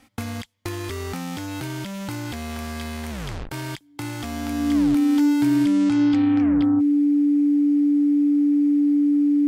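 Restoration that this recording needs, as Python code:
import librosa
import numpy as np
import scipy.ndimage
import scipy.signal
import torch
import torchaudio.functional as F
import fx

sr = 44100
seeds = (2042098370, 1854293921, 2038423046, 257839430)

y = fx.notch(x, sr, hz=290.0, q=30.0)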